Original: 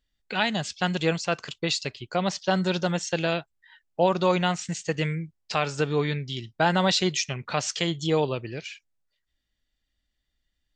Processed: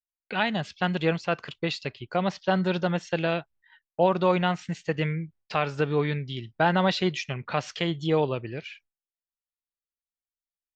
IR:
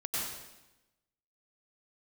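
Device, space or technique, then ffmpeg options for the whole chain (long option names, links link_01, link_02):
hearing-loss simulation: -af "lowpass=3000,agate=range=-33dB:threshold=-51dB:ratio=3:detection=peak"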